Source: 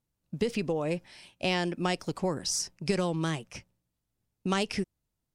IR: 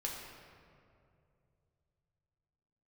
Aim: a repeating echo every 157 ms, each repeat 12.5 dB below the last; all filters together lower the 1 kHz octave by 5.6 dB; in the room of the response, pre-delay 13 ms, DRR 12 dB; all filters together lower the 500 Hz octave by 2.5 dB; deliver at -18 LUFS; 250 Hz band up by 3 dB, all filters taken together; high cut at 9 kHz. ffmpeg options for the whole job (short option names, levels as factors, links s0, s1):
-filter_complex "[0:a]lowpass=9000,equalizer=f=250:t=o:g=6.5,equalizer=f=500:t=o:g=-4.5,equalizer=f=1000:t=o:g=-6.5,aecho=1:1:157|314|471:0.237|0.0569|0.0137,asplit=2[s0][s1];[1:a]atrim=start_sample=2205,adelay=13[s2];[s1][s2]afir=irnorm=-1:irlink=0,volume=0.224[s3];[s0][s3]amix=inputs=2:normalize=0,volume=4.22"